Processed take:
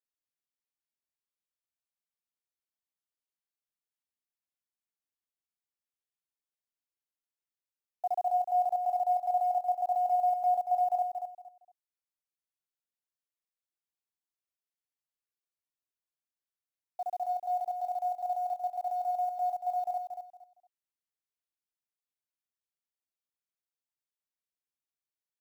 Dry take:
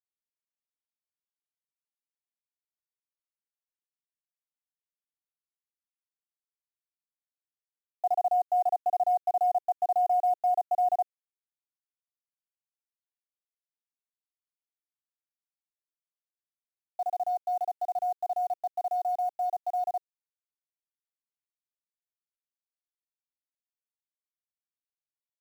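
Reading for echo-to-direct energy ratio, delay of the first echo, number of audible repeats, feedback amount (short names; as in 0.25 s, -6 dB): -6.0 dB, 0.231 s, 3, 24%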